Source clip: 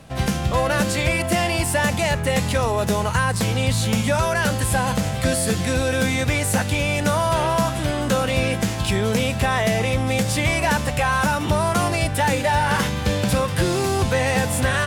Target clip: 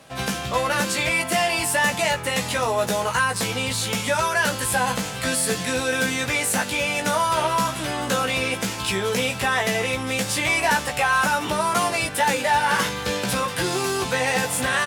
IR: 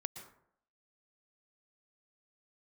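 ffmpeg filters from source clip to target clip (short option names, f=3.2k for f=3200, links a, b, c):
-filter_complex "[0:a]highpass=f=470:p=1,asplit=2[a][b];[b]adelay=16,volume=-4dB[c];[a][c]amix=inputs=2:normalize=0"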